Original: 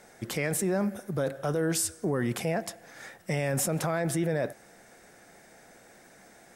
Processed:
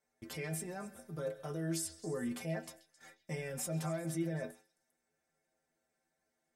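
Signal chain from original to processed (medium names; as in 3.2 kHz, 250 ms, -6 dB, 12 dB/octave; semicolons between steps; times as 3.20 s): gate -45 dBFS, range -18 dB; inharmonic resonator 78 Hz, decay 0.31 s, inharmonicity 0.008; on a send: repeats whose band climbs or falls 133 ms, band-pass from 3.8 kHz, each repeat 0.7 oct, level -11.5 dB; on the sum: trim -2.5 dB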